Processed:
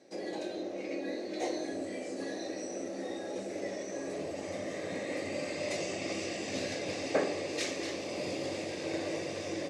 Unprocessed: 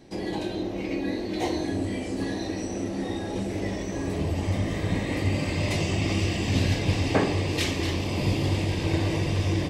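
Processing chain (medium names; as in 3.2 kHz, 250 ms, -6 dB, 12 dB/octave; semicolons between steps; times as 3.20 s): cabinet simulation 330–10000 Hz, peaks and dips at 560 Hz +8 dB, 950 Hz -8 dB, 3.1 kHz -7 dB, 6.4 kHz +4 dB; trim -6 dB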